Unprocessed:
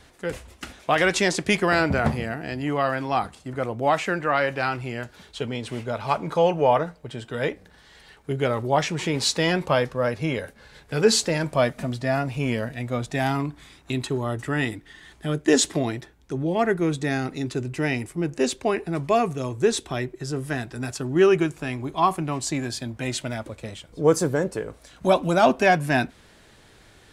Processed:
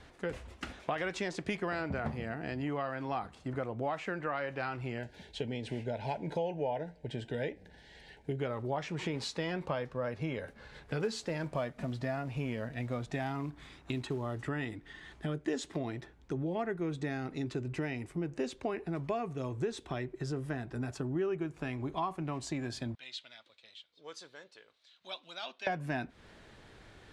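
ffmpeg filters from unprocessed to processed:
ffmpeg -i in.wav -filter_complex "[0:a]asettb=1/sr,asplit=3[link_01][link_02][link_03];[link_01]atrim=end=4.984[link_04];[link_02]atrim=start=4.98:end=8.39,asetpts=PTS-STARTPTS,afade=type=in:duration=0.004:curve=qsin,afade=type=out:start_time=3.406:duration=0.004:curve=qsin,asuperstop=centerf=1200:order=4:qfactor=1.8[link_05];[link_03]atrim=start=8.386[link_06];[link_04][link_05]acrossfade=duration=0.004:curve1=hsin:curve2=qsin[link_07];[link_07][link_06]acrossfade=duration=0.004:curve1=qsin:curve2=hsin,asettb=1/sr,asplit=3[link_08][link_09][link_10];[link_08]atrim=end=11.004[link_11];[link_09]atrim=start=11:end=14.4,asetpts=PTS-STARTPTS,afade=type=in:duration=0.004:curve=qsin,afade=type=out:start_time=3.396:duration=0.004:curve=qsin,acrusher=bits=6:mode=log:mix=0:aa=0.000001[link_12];[link_10]atrim=start=14.396[link_13];[link_11][link_12]acrossfade=duration=0.004:curve1=hsin:curve2=qsin[link_14];[link_14][link_13]acrossfade=duration=0.004:curve1=qsin:curve2=hsin,asettb=1/sr,asplit=3[link_15][link_16][link_17];[link_15]atrim=end=20.474[link_18];[link_16]atrim=start=20.47:end=21.54,asetpts=PTS-STARTPTS,afade=type=in:duration=0.004:curve=qsin,afade=type=out:start_time=1.066:duration=0.004:curve=qsin,equalizer=frequency=4200:width_type=o:width=3:gain=-5[link_19];[link_17]atrim=start=21.536[link_20];[link_18][link_19]acrossfade=duration=0.004:curve1=hsin:curve2=qsin[link_21];[link_21][link_20]acrossfade=duration=0.004:curve1=qsin:curve2=hsin,asettb=1/sr,asplit=3[link_22][link_23][link_24];[link_22]atrim=end=22.954[link_25];[link_23]atrim=start=22.95:end=25.67,asetpts=PTS-STARTPTS,afade=type=in:duration=0.004:curve=qsin,afade=type=out:start_time=2.716:duration=0.004:curve=qsin,bandpass=frequency=3800:width_type=q:width=3.4[link_26];[link_24]atrim=start=25.666[link_27];[link_25][link_26]acrossfade=duration=0.004:curve1=hsin:curve2=qsin[link_28];[link_28][link_27]acrossfade=duration=0.004:curve1=qsin:curve2=hsin,acompressor=threshold=-31dB:ratio=4,aemphasis=mode=reproduction:type=50fm,volume=-2.5dB" out.wav

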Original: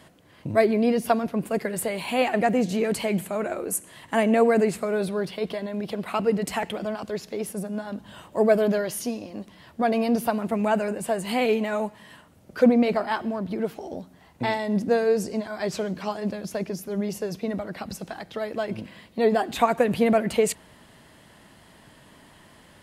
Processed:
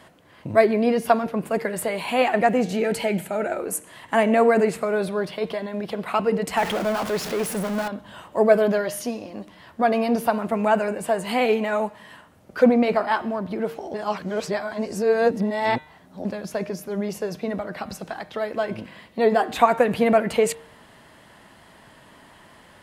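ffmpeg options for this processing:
ffmpeg -i in.wav -filter_complex "[0:a]asettb=1/sr,asplit=3[link_01][link_02][link_03];[link_01]atrim=end=2.734[link_04];[link_02]atrim=start=2.73:end=3.6,asetpts=PTS-STARTPTS,afade=type=in:duration=0.004:curve=qsin,afade=type=out:start_time=0.866:duration=0.004:curve=qsin,asuperstop=centerf=1100:order=8:qfactor=5[link_05];[link_03]atrim=start=3.596[link_06];[link_04][link_05]acrossfade=duration=0.004:curve1=hsin:curve2=qsin[link_07];[link_07][link_06]acrossfade=duration=0.004:curve1=qsin:curve2=hsin,asettb=1/sr,asplit=3[link_08][link_09][link_10];[link_08]atrim=end=6.574[link_11];[link_09]atrim=start=6.57:end=7.88,asetpts=PTS-STARTPTS,afade=type=in:duration=0.004:curve=qsin,afade=type=out:start_time=1.306:duration=0.004:curve=qsin,aeval=exprs='val(0)+0.5*0.0422*sgn(val(0))':channel_layout=same[link_12];[link_10]atrim=start=7.876[link_13];[link_11][link_12]acrossfade=duration=0.004:curve1=hsin:curve2=qsin[link_14];[link_14][link_13]acrossfade=duration=0.004:curve1=qsin:curve2=hsin,asplit=3[link_15][link_16][link_17];[link_15]atrim=end=13.942[link_18];[link_16]atrim=start=13.938:end=16.252,asetpts=PTS-STARTPTS,areverse[link_19];[link_17]atrim=start=16.248[link_20];[link_18][link_19]acrossfade=duration=0.004:curve1=hsin:curve2=hsin[link_21];[link_21][link_20]acrossfade=duration=0.004:curve1=hsin:curve2=hsin,equalizer=frequency=1100:width=0.45:gain=6,bandreject=frequency=152.4:width_type=h:width=4,bandreject=frequency=304.8:width_type=h:width=4,bandreject=frequency=457.2:width_type=h:width=4,bandreject=frequency=609.6:width_type=h:width=4,bandreject=frequency=762:width_type=h:width=4,bandreject=frequency=914.4:width_type=h:width=4,bandreject=frequency=1066.8:width_type=h:width=4,bandreject=frequency=1219.2:width_type=h:width=4,bandreject=frequency=1371.6:width_type=h:width=4,bandreject=frequency=1524:width_type=h:width=4,bandreject=frequency=1676.4:width_type=h:width=4,bandreject=frequency=1828.8:width_type=h:width=4,bandreject=frequency=1981.2:width_type=h:width=4,bandreject=frequency=2133.6:width_type=h:width=4,bandreject=frequency=2286:width_type=h:width=4,bandreject=frequency=2438.4:width_type=h:width=4,bandreject=frequency=2590.8:width_type=h:width=4,bandreject=frequency=2743.2:width_type=h:width=4,bandreject=frequency=2895.6:width_type=h:width=4,bandreject=frequency=3048:width_type=h:width=4,bandreject=frequency=3200.4:width_type=h:width=4,bandreject=frequency=3352.8:width_type=h:width=4,bandreject=frequency=3505.2:width_type=h:width=4,bandreject=frequency=3657.6:width_type=h:width=4,bandreject=frequency=3810:width_type=h:width=4,bandreject=frequency=3962.4:width_type=h:width=4,bandreject=frequency=4114.8:width_type=h:width=4,volume=-1dB" out.wav

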